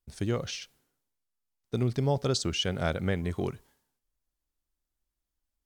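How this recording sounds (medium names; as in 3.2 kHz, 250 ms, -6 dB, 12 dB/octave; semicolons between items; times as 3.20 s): noise floor -86 dBFS; spectral tilt -5.0 dB/octave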